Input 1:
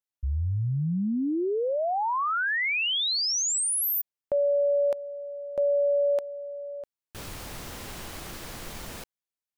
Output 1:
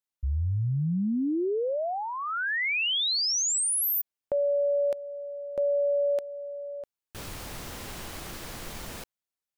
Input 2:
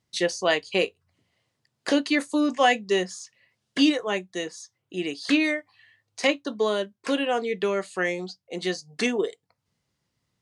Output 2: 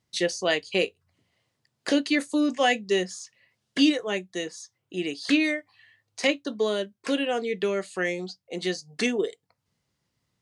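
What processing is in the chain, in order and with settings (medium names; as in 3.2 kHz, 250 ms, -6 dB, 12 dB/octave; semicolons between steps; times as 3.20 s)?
dynamic bell 1 kHz, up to -7 dB, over -42 dBFS, Q 1.5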